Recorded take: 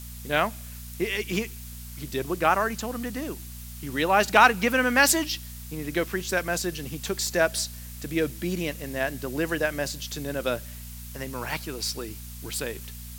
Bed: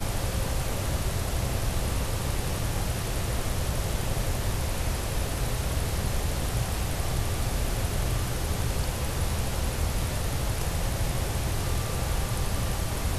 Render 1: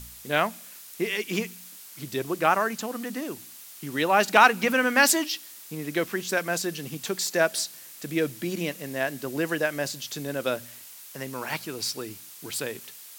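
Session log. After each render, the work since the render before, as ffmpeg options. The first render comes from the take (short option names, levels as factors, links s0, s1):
-af "bandreject=f=60:t=h:w=4,bandreject=f=120:t=h:w=4,bandreject=f=180:t=h:w=4,bandreject=f=240:t=h:w=4"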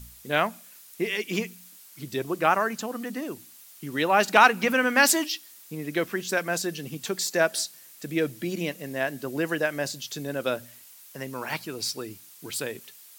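-af "afftdn=nr=6:nf=-46"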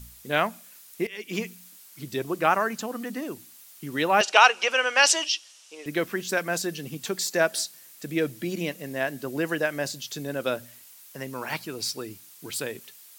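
-filter_complex "[0:a]asettb=1/sr,asplit=3[s0][s1][s2];[s0]atrim=end=4.214[s3];[s1]atrim=start=4.21:end=5.86,asetpts=PTS-STARTPTS,afade=t=in:d=0.004:c=qsin,afade=t=out:st=1.646:d=0.004:c=qsin,highpass=f=450:w=0.5412,highpass=f=450:w=1.3066,equalizer=f=1900:t=q:w=4:g=-3,equalizer=f=2900:t=q:w=4:g=9,equalizer=f=5700:t=q:w=4:g=7,lowpass=f=8600:w=0.5412,lowpass=f=8600:w=1.3066[s4];[s2]atrim=start=5.856[s5];[s3][s4]acrossfade=d=0.004:c1=hsin:c2=qsin[s6];[s6][s5]acrossfade=d=0.004:c1=qsin:c2=hsin,asplit=2[s7][s8];[s7]atrim=end=1.07,asetpts=PTS-STARTPTS,afade=t=out:st=1.066:d=0.004:c=hsin:silence=0.158489[s9];[s8]atrim=start=1.07,asetpts=PTS-STARTPTS,afade=t=in:d=0.4:silence=0.158489[s10];[s9][s10]concat=n=2:v=0:a=1"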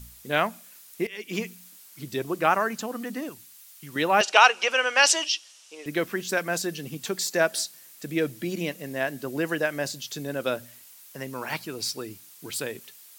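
-filter_complex "[0:a]asettb=1/sr,asplit=3[s0][s1][s2];[s0]atrim=end=3.294[s3];[s1]atrim=start=3.29:end=3.96,asetpts=PTS-STARTPTS,afade=t=in:d=0.004:c=qsin,afade=t=out:st=0.666:d=0.004:c=qsin,equalizer=f=340:t=o:w=2.1:g=-11.5[s4];[s2]atrim=start=3.956[s5];[s3][s4]acrossfade=d=0.004:c1=hsin:c2=qsin[s6];[s6][s5]acrossfade=d=0.004:c1=qsin:c2=hsin"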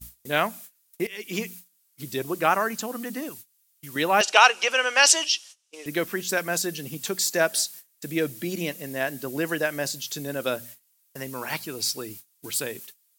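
-af "agate=range=0.0708:threshold=0.00562:ratio=16:detection=peak,highshelf=f=6000:g=7.5"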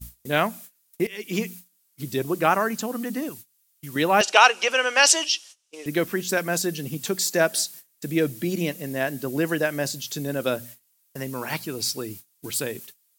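-af "lowshelf=f=410:g=6.5"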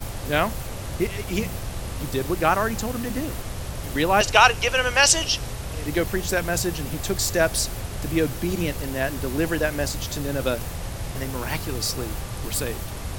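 -filter_complex "[1:a]volume=0.668[s0];[0:a][s0]amix=inputs=2:normalize=0"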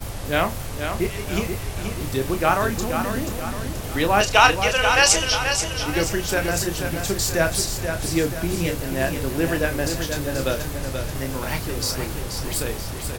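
-filter_complex "[0:a]asplit=2[s0][s1];[s1]adelay=30,volume=0.398[s2];[s0][s2]amix=inputs=2:normalize=0,asplit=2[s3][s4];[s4]aecho=0:1:482|964|1446|1928|2410|2892:0.447|0.21|0.0987|0.0464|0.0218|0.0102[s5];[s3][s5]amix=inputs=2:normalize=0"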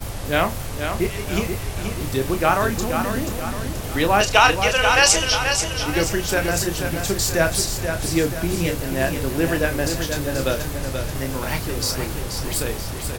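-af "volume=1.19,alimiter=limit=0.708:level=0:latency=1"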